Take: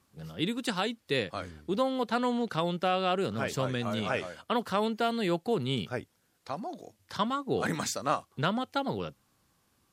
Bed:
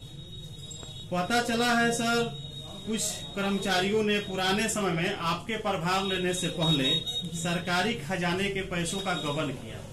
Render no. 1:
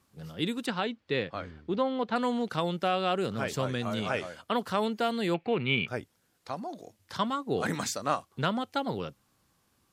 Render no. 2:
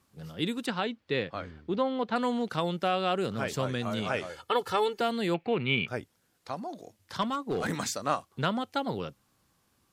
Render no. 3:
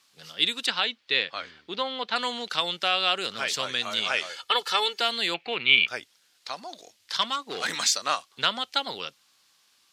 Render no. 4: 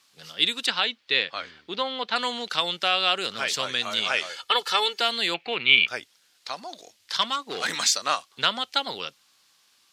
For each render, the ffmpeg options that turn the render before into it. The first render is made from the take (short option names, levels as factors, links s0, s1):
-filter_complex "[0:a]asettb=1/sr,asplit=3[s0][s1][s2];[s0]atrim=end=0.664[s3];[s1]atrim=start=0.66:end=2.16,asetpts=PTS-STARTPTS,afade=t=in:d=0.004:c=qsin,afade=t=out:st=1.496:d=0.004:c=qsin,lowpass=3400[s4];[s2]atrim=start=2.156[s5];[s3][s4]acrossfade=d=0.004:c1=hsin:c2=qsin[s6];[s6][s5]acrossfade=d=0.004:c1=qsin:c2=hsin,asettb=1/sr,asplit=3[s7][s8][s9];[s7]atrim=end=5.344[s10];[s8]atrim=start=5.34:end=5.88,asetpts=PTS-STARTPTS,afade=t=in:d=0.004:c=qsin,afade=t=out:st=0.536:d=0.004:c=qsin,lowpass=f=2400:t=q:w=8.1[s11];[s9]atrim=start=5.876[s12];[s10][s11]acrossfade=d=0.004:c1=hsin:c2=qsin[s13];[s13][s12]acrossfade=d=0.004:c1=qsin:c2=hsin"
-filter_complex "[0:a]asettb=1/sr,asplit=3[s0][s1][s2];[s0]atrim=end=4.294[s3];[s1]atrim=start=4.29:end=5.01,asetpts=PTS-STARTPTS,afade=t=in:d=0.004:c=qsin,afade=t=out:st=0.716:d=0.004:c=qsin,aecho=1:1:2.3:0.84,atrim=end_sample=31752[s4];[s2]atrim=start=5.006[s5];[s3][s4]acrossfade=d=0.004:c1=hsin:c2=qsin[s6];[s6][s5]acrossfade=d=0.004:c1=qsin:c2=hsin,asplit=3[s7][s8][s9];[s7]afade=t=out:st=7.21:d=0.02[s10];[s8]asoftclip=type=hard:threshold=0.0596,afade=t=in:st=7.21:d=0.02,afade=t=out:st=7.71:d=0.02[s11];[s9]afade=t=in:st=7.71:d=0.02[s12];[s10][s11][s12]amix=inputs=3:normalize=0"
-af "highpass=f=770:p=1,equalizer=f=4000:w=0.51:g=14.5"
-af "volume=1.19"